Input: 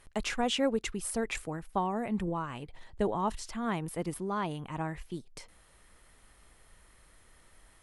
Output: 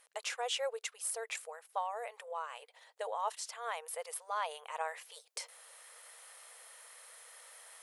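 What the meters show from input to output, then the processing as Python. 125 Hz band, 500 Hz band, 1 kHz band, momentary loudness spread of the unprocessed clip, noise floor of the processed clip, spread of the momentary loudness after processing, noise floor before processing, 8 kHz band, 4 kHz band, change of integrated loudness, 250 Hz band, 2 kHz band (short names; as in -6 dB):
under -40 dB, -7.0 dB, -3.5 dB, 13 LU, -68 dBFS, 16 LU, -61 dBFS, +0.5 dB, -3.0 dB, -6.0 dB, under -40 dB, -3.5 dB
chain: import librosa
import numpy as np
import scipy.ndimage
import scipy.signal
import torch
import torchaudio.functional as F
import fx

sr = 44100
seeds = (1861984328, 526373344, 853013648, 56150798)

y = fx.high_shelf(x, sr, hz=4300.0, db=7.0)
y = fx.rider(y, sr, range_db=10, speed_s=2.0)
y = fx.brickwall_highpass(y, sr, low_hz=440.0)
y = y * librosa.db_to_amplitude(-5.0)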